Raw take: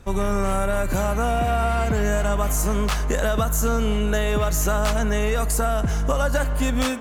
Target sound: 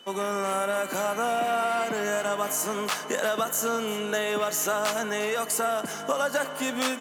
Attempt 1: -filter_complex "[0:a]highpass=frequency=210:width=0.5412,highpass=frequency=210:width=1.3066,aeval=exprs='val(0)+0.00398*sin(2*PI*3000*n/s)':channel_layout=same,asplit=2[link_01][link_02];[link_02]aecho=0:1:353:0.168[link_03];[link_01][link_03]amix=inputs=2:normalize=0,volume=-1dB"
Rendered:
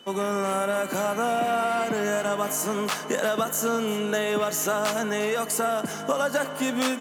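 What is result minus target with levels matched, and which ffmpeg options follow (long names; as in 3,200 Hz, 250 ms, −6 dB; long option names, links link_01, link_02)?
250 Hz band +3.5 dB
-filter_complex "[0:a]highpass=frequency=210:width=0.5412,highpass=frequency=210:width=1.3066,lowshelf=frequency=310:gain=-8,aeval=exprs='val(0)+0.00398*sin(2*PI*3000*n/s)':channel_layout=same,asplit=2[link_01][link_02];[link_02]aecho=0:1:353:0.168[link_03];[link_01][link_03]amix=inputs=2:normalize=0,volume=-1dB"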